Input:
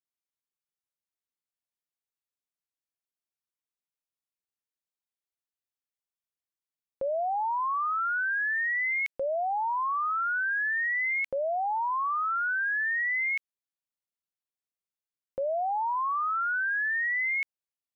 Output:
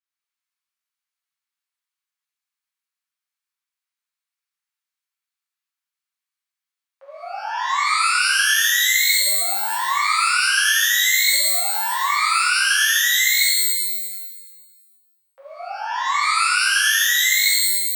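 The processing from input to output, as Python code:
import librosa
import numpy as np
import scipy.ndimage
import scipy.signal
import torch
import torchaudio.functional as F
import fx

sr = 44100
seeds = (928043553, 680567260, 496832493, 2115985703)

p1 = scipy.signal.sosfilt(scipy.signal.butter(4, 1100.0, 'highpass', fs=sr, output='sos'), x)
p2 = fx.high_shelf(p1, sr, hz=3100.0, db=-10.0)
p3 = 10.0 ** (-36.0 / 20.0) * np.tanh(p2 / 10.0 ** (-36.0 / 20.0))
p4 = p2 + (p3 * librosa.db_to_amplitude(-7.5))
y = fx.rev_shimmer(p4, sr, seeds[0], rt60_s=1.4, semitones=12, shimmer_db=-2, drr_db=-8.5)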